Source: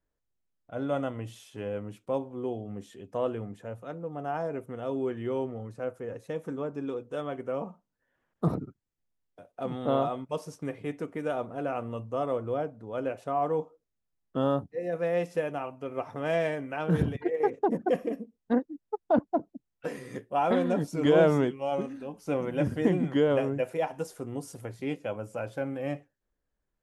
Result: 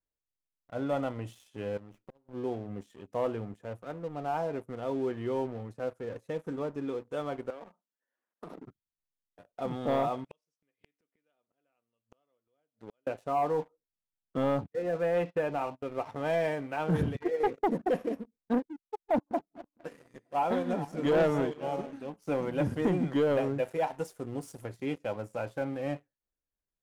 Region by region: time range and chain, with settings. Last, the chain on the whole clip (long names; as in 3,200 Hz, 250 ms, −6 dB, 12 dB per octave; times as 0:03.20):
0:01.77–0:02.29: gate with flip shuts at −24 dBFS, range −25 dB + downward compressor 8 to 1, threshold −42 dBFS + windowed peak hold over 9 samples
0:07.50–0:08.66: Bessel high-pass filter 310 Hz, order 6 + downward compressor 10 to 1, threshold −38 dBFS
0:10.24–0:13.07: meter weighting curve D + gate with flip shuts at −32 dBFS, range −36 dB
0:14.37–0:15.84: mu-law and A-law mismatch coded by mu + noise gate −43 dBFS, range −22 dB + inverse Chebyshev low-pass filter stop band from 7,700 Hz, stop band 50 dB
0:18.79–0:21.93: feedback delay that plays each chunk backwards 229 ms, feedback 49%, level −11 dB + expander for the loud parts, over −39 dBFS
whole clip: dynamic equaliser 870 Hz, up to +5 dB, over −45 dBFS, Q 3.6; leveller curve on the samples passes 2; level −8.5 dB